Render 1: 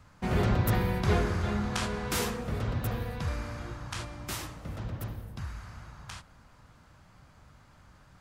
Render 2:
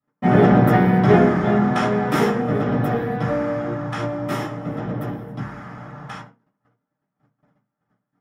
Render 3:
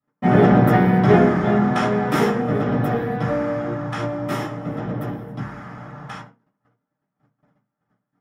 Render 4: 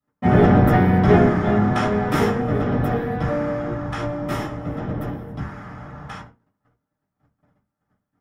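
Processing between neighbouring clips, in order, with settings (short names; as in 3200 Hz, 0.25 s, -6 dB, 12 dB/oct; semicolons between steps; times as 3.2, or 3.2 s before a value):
gate -51 dBFS, range -37 dB; reverb RT60 0.25 s, pre-delay 3 ms, DRR -6.5 dB; gain -7 dB
nothing audible
octaver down 1 oct, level -5 dB; gain -1 dB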